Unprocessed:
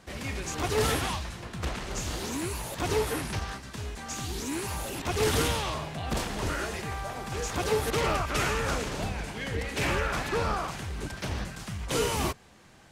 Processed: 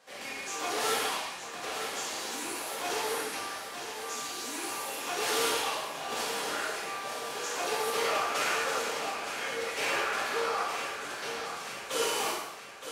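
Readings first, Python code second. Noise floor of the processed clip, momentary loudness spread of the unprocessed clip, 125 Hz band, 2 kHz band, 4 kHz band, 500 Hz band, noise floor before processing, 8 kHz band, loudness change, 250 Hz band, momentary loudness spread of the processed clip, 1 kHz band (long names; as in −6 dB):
−42 dBFS, 9 LU, −24.5 dB, +0.5 dB, +1.0 dB, −3.0 dB, −47 dBFS, +0.5 dB, −1.5 dB, −10.0 dB, 8 LU, +0.5 dB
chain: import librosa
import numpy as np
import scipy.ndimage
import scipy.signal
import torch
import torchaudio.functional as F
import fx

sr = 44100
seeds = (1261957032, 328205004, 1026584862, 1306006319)

y = scipy.signal.sosfilt(scipy.signal.butter(2, 500.0, 'highpass', fs=sr, output='sos'), x)
y = fx.echo_feedback(y, sr, ms=918, feedback_pct=51, wet_db=-9)
y = fx.rev_gated(y, sr, seeds[0], gate_ms=300, shape='falling', drr_db=-5.0)
y = F.gain(torch.from_numpy(y), -6.0).numpy()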